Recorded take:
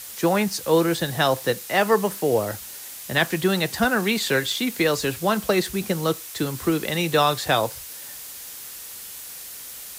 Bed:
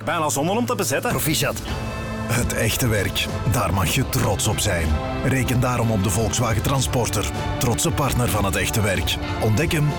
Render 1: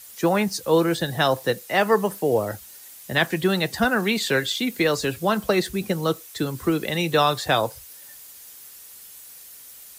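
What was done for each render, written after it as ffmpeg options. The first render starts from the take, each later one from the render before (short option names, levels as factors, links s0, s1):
-af "afftdn=nr=9:nf=-38"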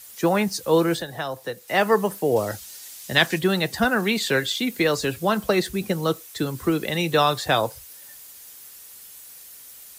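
-filter_complex "[0:a]asettb=1/sr,asplit=3[s0][s1][s2];[s0]atrim=end=1.004[s3];[s1]atrim=start=1:end=1.68,asetpts=PTS-STARTPTS,afade=t=in:d=0.004:c=qsin,afade=t=out:st=0.676:d=0.004:c=qsin,acrossover=split=110|380|1600|6000[s4][s5][s6][s7][s8];[s4]acompressor=threshold=0.00282:ratio=3[s9];[s5]acompressor=threshold=0.00631:ratio=3[s10];[s6]acompressor=threshold=0.0282:ratio=3[s11];[s7]acompressor=threshold=0.00891:ratio=3[s12];[s8]acompressor=threshold=0.00282:ratio=3[s13];[s9][s10][s11][s12][s13]amix=inputs=5:normalize=0[s14];[s2]atrim=start=1.676[s15];[s3][s14]acrossfade=d=0.004:c1=hsin:c2=qsin[s16];[s16][s15]acrossfade=d=0.004:c1=qsin:c2=hsin,asettb=1/sr,asplit=3[s17][s18][s19];[s17]atrim=end=2.364[s20];[s18]atrim=start=2.36:end=3.39,asetpts=PTS-STARTPTS,afade=t=in:d=0.004:c=qsin,afade=t=out:st=1.026:d=0.004:c=qsin,equalizer=f=5000:t=o:w=2:g=7.5[s21];[s19]atrim=start=3.386[s22];[s20][s21]acrossfade=d=0.004:c1=hsin:c2=qsin[s23];[s23][s22]acrossfade=d=0.004:c1=qsin:c2=hsin"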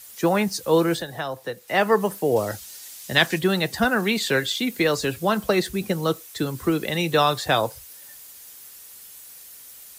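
-filter_complex "[0:a]asettb=1/sr,asplit=3[s0][s1][s2];[s0]atrim=end=1.204[s3];[s1]atrim=start=1.2:end=2.01,asetpts=PTS-STARTPTS,afade=t=in:d=0.004:c=qsin,afade=t=out:st=0.806:d=0.004:c=qsin,bass=f=250:g=0,treble=f=4000:g=-3[s4];[s2]atrim=start=2.006[s5];[s3][s4]acrossfade=d=0.004:c1=hsin:c2=qsin[s6];[s6][s5]acrossfade=d=0.004:c1=qsin:c2=hsin"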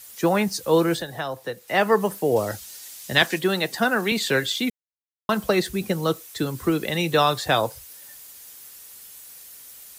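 -filter_complex "[0:a]asettb=1/sr,asplit=3[s0][s1][s2];[s0]atrim=end=3.224[s3];[s1]atrim=start=3.22:end=4.12,asetpts=PTS-STARTPTS,afade=t=in:d=0.004:c=qsin,afade=t=out:st=0.896:d=0.004:c=qsin,highpass=210[s4];[s2]atrim=start=4.116[s5];[s3][s4]acrossfade=d=0.004:c1=hsin:c2=qsin[s6];[s6][s5]acrossfade=d=0.004:c1=qsin:c2=hsin,asplit=3[s7][s8][s9];[s7]atrim=end=4.7,asetpts=PTS-STARTPTS,afade=t=out:st=4.696:d=0.004:c=hsin[s10];[s8]atrim=start=4.7:end=5.29,asetpts=PTS-STARTPTS,volume=0[s11];[s9]atrim=start=5.29,asetpts=PTS-STARTPTS,afade=t=in:d=0.004:c=hsin[s12];[s10][s11][s12]concat=n=3:v=0:a=1"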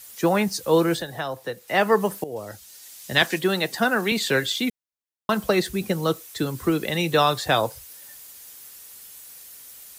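-filter_complex "[0:a]asplit=2[s0][s1];[s0]atrim=end=2.24,asetpts=PTS-STARTPTS,afade=t=out:st=2.236:d=0.004:c=hsin:silence=0.16788[s2];[s1]atrim=start=2.24,asetpts=PTS-STARTPTS,afade=t=in:d=1.08:silence=0.16788[s3];[s2][s3]concat=n=2:v=0:a=1"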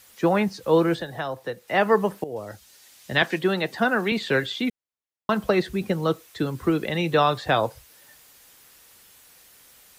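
-filter_complex "[0:a]acrossover=split=4400[s0][s1];[s1]acompressor=threshold=0.00891:ratio=4:attack=1:release=60[s2];[s0][s2]amix=inputs=2:normalize=0,highshelf=f=4900:g=-9"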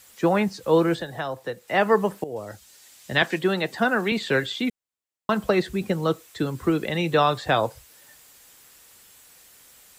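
-af "equalizer=f=7600:t=o:w=0.24:g=5.5"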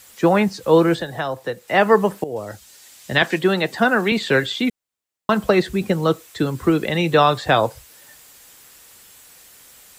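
-af "volume=1.78,alimiter=limit=0.794:level=0:latency=1"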